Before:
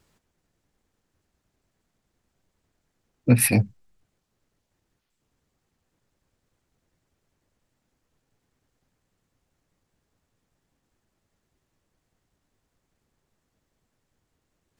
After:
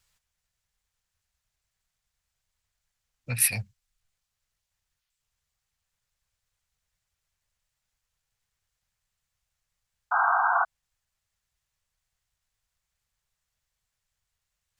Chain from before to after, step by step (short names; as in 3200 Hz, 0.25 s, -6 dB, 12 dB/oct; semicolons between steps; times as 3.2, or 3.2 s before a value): passive tone stack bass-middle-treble 10-0-10; painted sound noise, 10.11–10.65, 670–1600 Hz -23 dBFS